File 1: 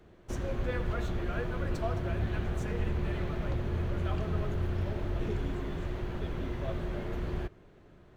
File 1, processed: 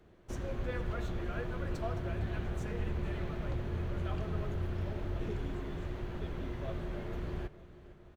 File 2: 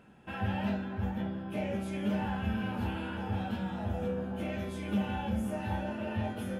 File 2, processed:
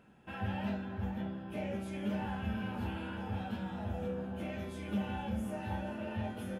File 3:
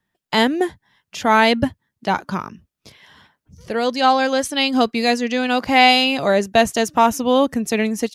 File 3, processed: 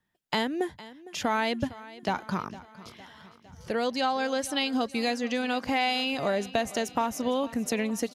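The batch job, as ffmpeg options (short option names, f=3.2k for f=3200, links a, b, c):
-af "acompressor=threshold=-21dB:ratio=4,aecho=1:1:458|916|1374|1832|2290:0.126|0.0743|0.0438|0.0259|0.0153,volume=-4dB"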